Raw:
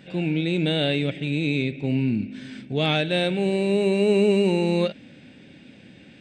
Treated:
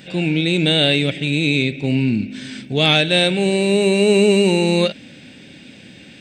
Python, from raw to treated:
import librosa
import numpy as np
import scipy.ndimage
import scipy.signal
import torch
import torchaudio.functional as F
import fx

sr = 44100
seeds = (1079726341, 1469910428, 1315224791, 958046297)

y = fx.high_shelf(x, sr, hz=3300.0, db=11.5)
y = y * librosa.db_to_amplitude(5.0)